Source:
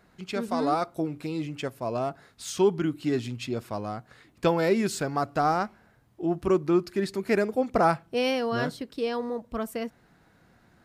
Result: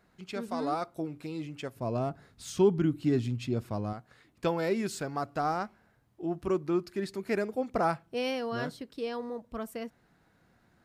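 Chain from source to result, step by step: 1.76–3.93 low shelf 300 Hz +11.5 dB; gain -6 dB

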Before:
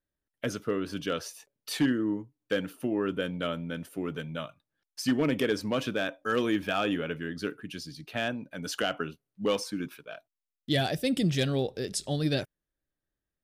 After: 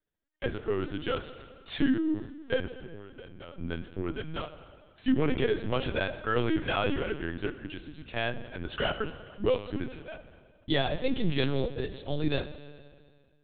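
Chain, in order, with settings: 2.66–3.59 compressor 8:1, threshold -43 dBFS, peak gain reduction 18 dB; 8.87–9.78 low shelf 250 Hz +2.5 dB; reverb RT60 2.0 s, pre-delay 8 ms, DRR 10 dB; LPC vocoder at 8 kHz pitch kept

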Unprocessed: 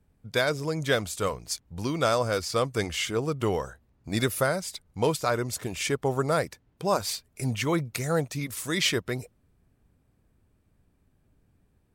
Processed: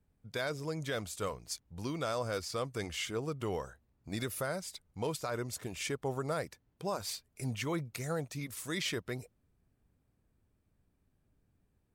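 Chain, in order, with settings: limiter -17 dBFS, peak gain reduction 6 dB; gain -8 dB

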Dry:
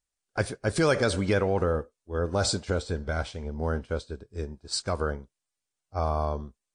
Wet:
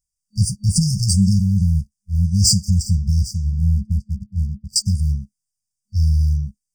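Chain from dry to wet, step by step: 3.53–4.76 EQ curve 160 Hz 0 dB, 280 Hz +12 dB, 2000 Hz -24 dB; sample leveller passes 2; FFT band-reject 210–4600 Hz; gain +9 dB

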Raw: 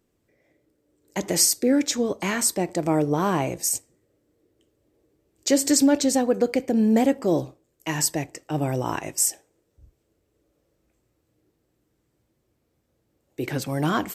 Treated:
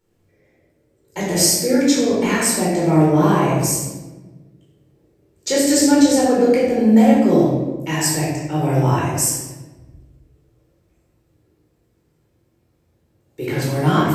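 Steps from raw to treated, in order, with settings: shoebox room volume 730 m³, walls mixed, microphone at 4.4 m; gain -3.5 dB

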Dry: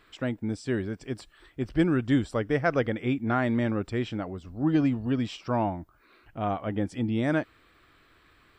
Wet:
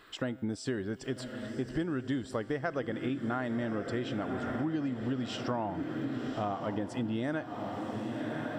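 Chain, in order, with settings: low shelf 110 Hz -10 dB; notch 2300 Hz, Q 7.2; resonator 130 Hz, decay 0.95 s, harmonics all, mix 40%; diffused feedback echo 1.118 s, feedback 55%, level -11 dB; compressor 6:1, threshold -39 dBFS, peak gain reduction 14.5 dB; gain +8.5 dB

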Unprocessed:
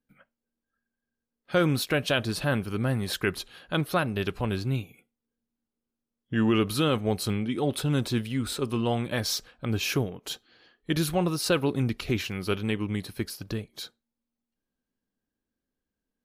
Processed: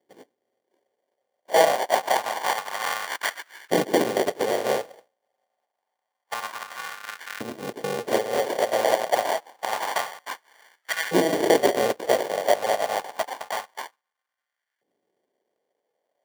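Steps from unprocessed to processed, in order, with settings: FFT order left unsorted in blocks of 128 samples; in parallel at +1.5 dB: compressor, threshold -36 dBFS, peak gain reduction 16.5 dB; 6.34–8.08 on the sum: LPF 2800 Hz 12 dB/oct; sample-and-hold 34×; LFO high-pass saw up 0.27 Hz 310–1600 Hz; gain +2 dB

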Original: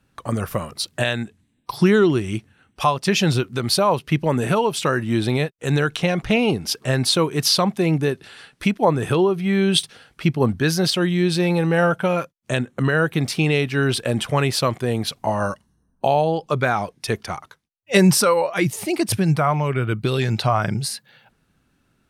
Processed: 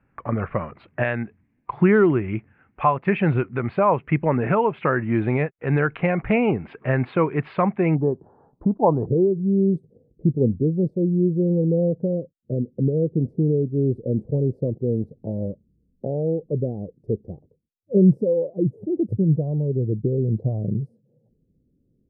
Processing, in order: elliptic low-pass 2300 Hz, stop band 60 dB, from 7.94 s 950 Hz, from 9.05 s 500 Hz

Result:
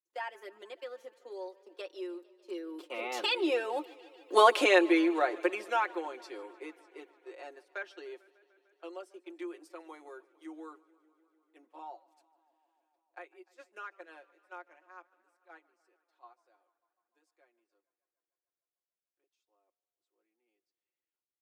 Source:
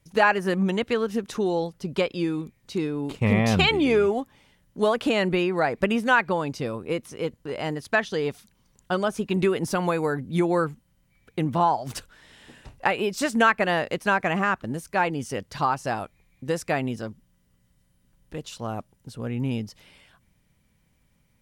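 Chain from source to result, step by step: Doppler pass-by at 4.42, 34 m/s, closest 8.3 m; gate -53 dBFS, range -15 dB; steep high-pass 290 Hz 72 dB/oct; comb 5.6 ms, depth 78%; warbling echo 0.149 s, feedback 78%, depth 80 cents, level -23.5 dB; gain +3 dB

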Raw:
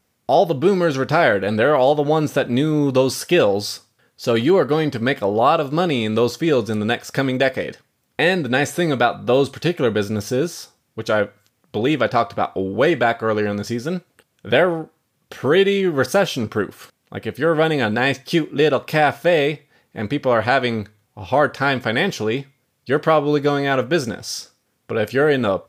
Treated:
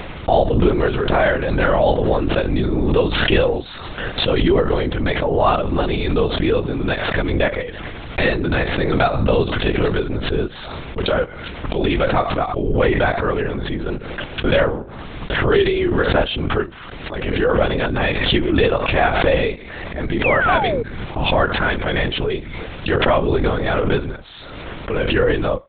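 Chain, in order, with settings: LPC vocoder at 8 kHz whisper; painted sound fall, 20.24–20.83, 430–2700 Hz -20 dBFS; backwards sustainer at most 33 dB/s; gain -1 dB

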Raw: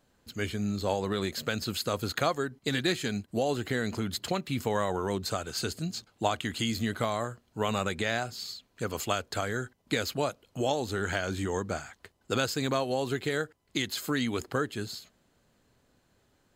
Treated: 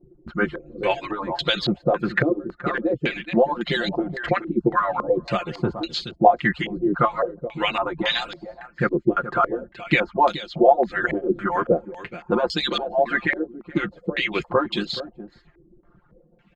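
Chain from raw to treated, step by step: median-filter separation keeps percussive; in parallel at -2 dB: vocal rider 0.5 s; on the sum: low shelf 260 Hz +11.5 dB; comb 5.7 ms, depth 91%; on a send: echo 0.424 s -13 dB; on the sum: stepped low-pass 3.6 Hz 360–3500 Hz; gain -1.5 dB

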